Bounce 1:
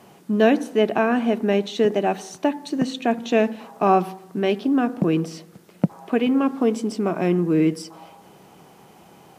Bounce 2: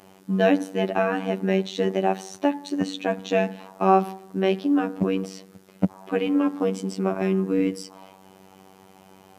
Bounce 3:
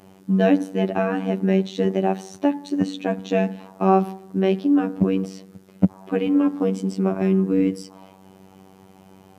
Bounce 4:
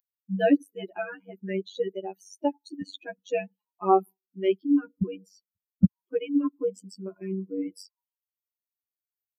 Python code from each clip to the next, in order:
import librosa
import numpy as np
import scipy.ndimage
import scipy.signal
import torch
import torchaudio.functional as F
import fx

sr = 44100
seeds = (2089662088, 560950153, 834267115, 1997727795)

y1 = fx.robotise(x, sr, hz=95.5)
y2 = fx.low_shelf(y1, sr, hz=340.0, db=10.0)
y2 = y2 * 10.0 ** (-2.5 / 20.0)
y3 = fx.bin_expand(y2, sr, power=3.0)